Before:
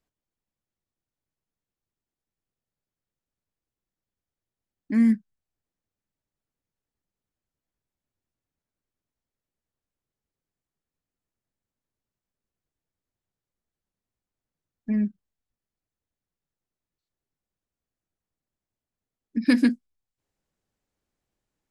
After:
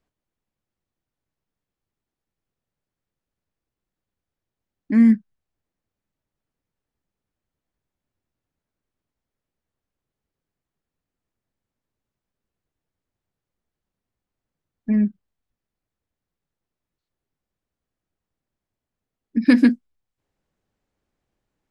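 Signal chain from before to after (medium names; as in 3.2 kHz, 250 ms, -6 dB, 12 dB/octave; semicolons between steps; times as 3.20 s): treble shelf 4.8 kHz -10.5 dB; trim +5.5 dB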